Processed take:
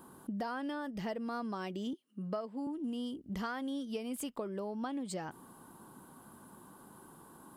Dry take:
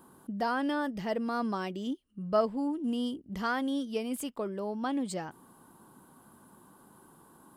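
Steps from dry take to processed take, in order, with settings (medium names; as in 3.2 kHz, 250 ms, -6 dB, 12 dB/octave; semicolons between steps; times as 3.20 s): 1.93–2.67 s: high-pass 190 Hz 24 dB/octave; compression 10:1, threshold -37 dBFS, peak gain reduction 16.5 dB; trim +2 dB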